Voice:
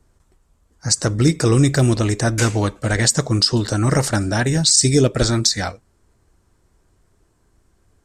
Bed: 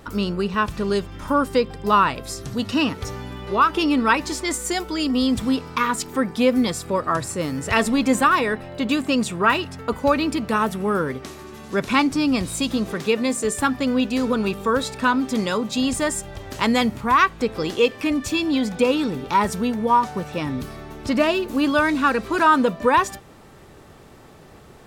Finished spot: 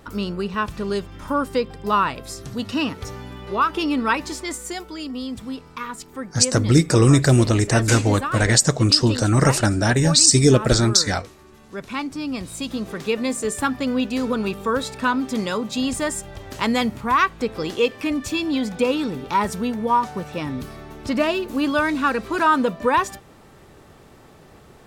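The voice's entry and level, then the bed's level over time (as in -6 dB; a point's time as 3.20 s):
5.50 s, +0.5 dB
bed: 4.24 s -2.5 dB
5.24 s -10 dB
11.87 s -10 dB
13.26 s -1.5 dB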